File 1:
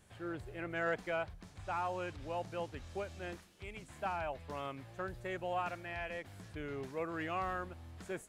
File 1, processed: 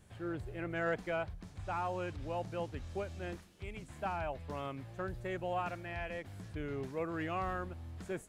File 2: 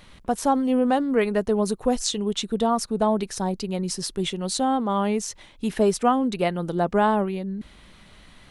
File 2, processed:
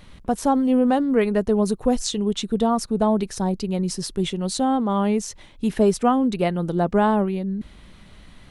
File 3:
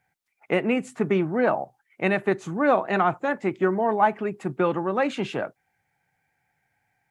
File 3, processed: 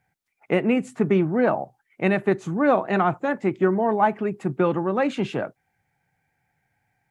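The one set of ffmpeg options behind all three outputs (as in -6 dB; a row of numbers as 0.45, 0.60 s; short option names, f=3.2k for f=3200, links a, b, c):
-af "lowshelf=f=370:g=6.5,volume=-1dB"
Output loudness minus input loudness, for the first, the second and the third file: +1.0, +2.0, +1.5 LU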